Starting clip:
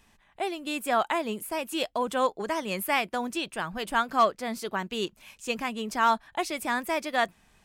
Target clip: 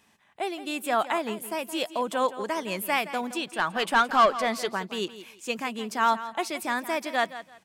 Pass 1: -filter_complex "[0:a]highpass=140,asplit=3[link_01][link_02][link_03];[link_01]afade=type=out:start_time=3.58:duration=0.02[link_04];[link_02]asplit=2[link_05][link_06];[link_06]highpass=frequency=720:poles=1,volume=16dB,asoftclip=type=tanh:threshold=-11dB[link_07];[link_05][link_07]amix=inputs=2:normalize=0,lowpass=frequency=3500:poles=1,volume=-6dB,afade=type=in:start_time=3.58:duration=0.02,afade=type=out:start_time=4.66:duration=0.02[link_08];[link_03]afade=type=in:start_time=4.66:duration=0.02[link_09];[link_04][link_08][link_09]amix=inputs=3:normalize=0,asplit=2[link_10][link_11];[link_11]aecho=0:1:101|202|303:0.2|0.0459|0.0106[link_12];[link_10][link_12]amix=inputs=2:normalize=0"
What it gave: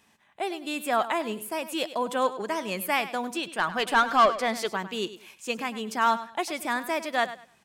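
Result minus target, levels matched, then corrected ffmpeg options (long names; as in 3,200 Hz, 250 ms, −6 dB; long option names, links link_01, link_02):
echo 67 ms early
-filter_complex "[0:a]highpass=140,asplit=3[link_01][link_02][link_03];[link_01]afade=type=out:start_time=3.58:duration=0.02[link_04];[link_02]asplit=2[link_05][link_06];[link_06]highpass=frequency=720:poles=1,volume=16dB,asoftclip=type=tanh:threshold=-11dB[link_07];[link_05][link_07]amix=inputs=2:normalize=0,lowpass=frequency=3500:poles=1,volume=-6dB,afade=type=in:start_time=3.58:duration=0.02,afade=type=out:start_time=4.66:duration=0.02[link_08];[link_03]afade=type=in:start_time=4.66:duration=0.02[link_09];[link_04][link_08][link_09]amix=inputs=3:normalize=0,asplit=2[link_10][link_11];[link_11]aecho=0:1:168|336|504:0.2|0.0459|0.0106[link_12];[link_10][link_12]amix=inputs=2:normalize=0"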